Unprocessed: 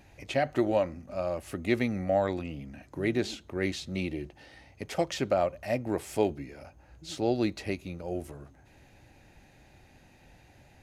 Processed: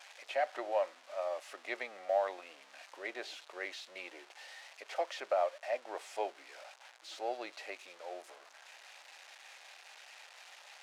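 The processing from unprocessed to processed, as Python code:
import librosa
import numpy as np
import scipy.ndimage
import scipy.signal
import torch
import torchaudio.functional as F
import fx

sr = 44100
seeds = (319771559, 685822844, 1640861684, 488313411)

y = x + 0.5 * 10.0 ** (-28.0 / 20.0) * np.diff(np.sign(x), prepend=np.sign(x[:1]))
y = scipy.signal.sosfilt(scipy.signal.butter(4, 610.0, 'highpass', fs=sr, output='sos'), y)
y = fx.spacing_loss(y, sr, db_at_10k=27)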